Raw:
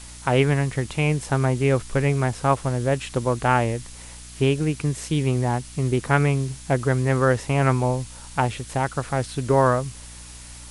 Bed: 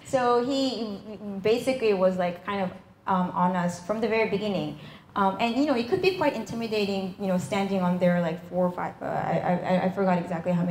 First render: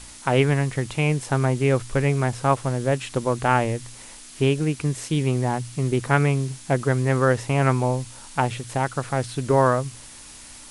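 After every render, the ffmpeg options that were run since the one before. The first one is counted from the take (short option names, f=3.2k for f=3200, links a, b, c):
-af "bandreject=f=60:t=h:w=4,bandreject=f=120:t=h:w=4,bandreject=f=180:t=h:w=4"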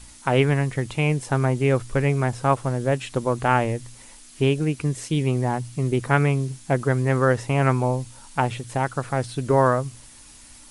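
-af "afftdn=nr=6:nf=-43"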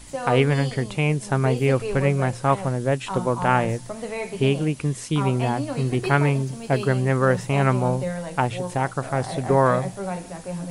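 -filter_complex "[1:a]volume=-6dB[a];[0:a][a]amix=inputs=2:normalize=0"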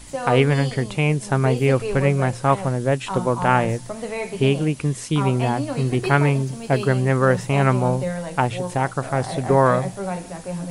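-af "volume=2dB"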